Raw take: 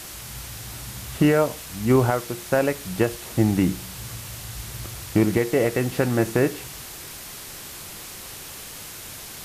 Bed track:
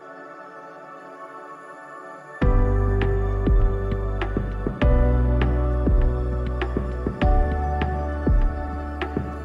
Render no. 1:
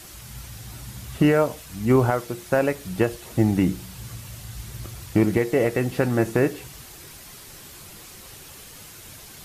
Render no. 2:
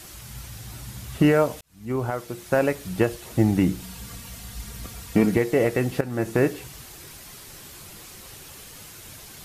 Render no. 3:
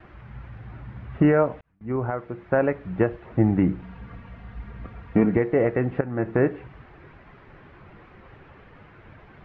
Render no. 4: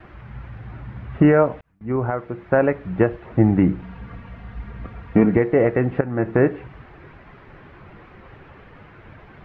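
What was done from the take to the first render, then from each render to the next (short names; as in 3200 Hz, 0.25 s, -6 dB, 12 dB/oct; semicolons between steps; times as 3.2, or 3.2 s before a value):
denoiser 7 dB, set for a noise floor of -39 dBFS
1.61–2.6 fade in linear; 3.8–5.36 comb 4.3 ms, depth 60%; 6.01–6.41 fade in, from -13.5 dB
gate with hold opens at -38 dBFS; LPF 2000 Hz 24 dB/oct
gain +4 dB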